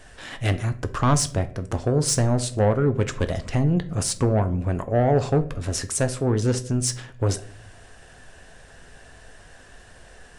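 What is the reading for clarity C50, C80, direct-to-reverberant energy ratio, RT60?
16.0 dB, 20.5 dB, 9.5 dB, 0.55 s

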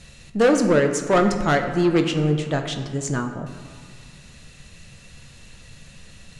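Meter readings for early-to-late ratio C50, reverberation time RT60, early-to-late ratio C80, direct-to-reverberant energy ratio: 7.5 dB, 2.0 s, 9.0 dB, 5.0 dB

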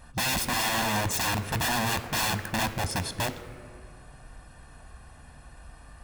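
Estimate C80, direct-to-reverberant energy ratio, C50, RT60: 13.0 dB, 9.5 dB, 12.0 dB, 2.0 s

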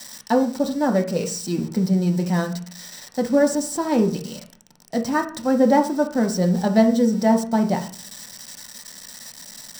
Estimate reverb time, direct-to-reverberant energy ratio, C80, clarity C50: 0.45 s, 3.0 dB, 16.0 dB, 10.5 dB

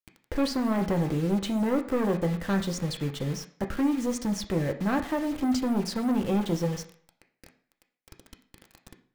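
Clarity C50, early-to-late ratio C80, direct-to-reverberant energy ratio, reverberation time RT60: 11.5 dB, 15.5 dB, 4.0 dB, 0.55 s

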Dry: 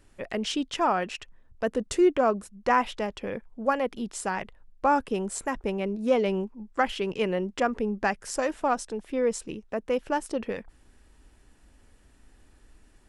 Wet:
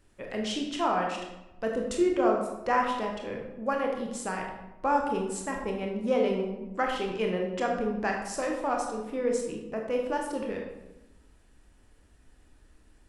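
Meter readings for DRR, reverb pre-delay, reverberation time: 0.5 dB, 22 ms, 1.0 s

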